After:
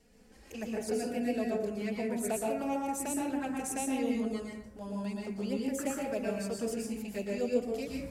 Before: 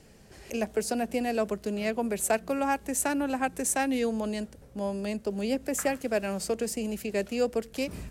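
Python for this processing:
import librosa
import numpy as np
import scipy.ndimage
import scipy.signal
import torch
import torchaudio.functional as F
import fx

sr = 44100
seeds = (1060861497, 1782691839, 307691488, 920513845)

y = fx.env_flanger(x, sr, rest_ms=4.5, full_db=-23.5)
y = fx.rev_plate(y, sr, seeds[0], rt60_s=0.76, hf_ratio=0.45, predelay_ms=105, drr_db=-2.0)
y = F.gain(torch.from_numpy(y), -7.0).numpy()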